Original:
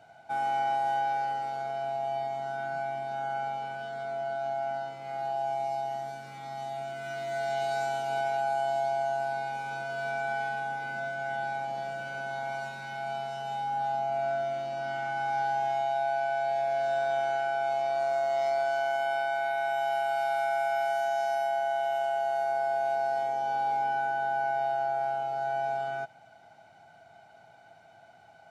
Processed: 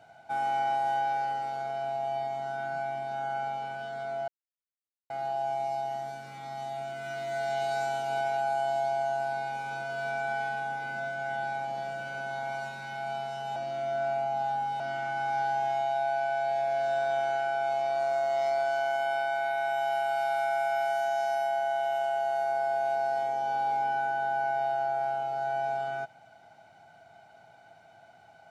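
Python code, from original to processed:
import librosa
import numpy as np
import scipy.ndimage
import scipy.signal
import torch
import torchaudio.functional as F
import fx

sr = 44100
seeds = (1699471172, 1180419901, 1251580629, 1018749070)

y = fx.edit(x, sr, fx.silence(start_s=4.28, length_s=0.82),
    fx.reverse_span(start_s=13.56, length_s=1.24), tone=tone)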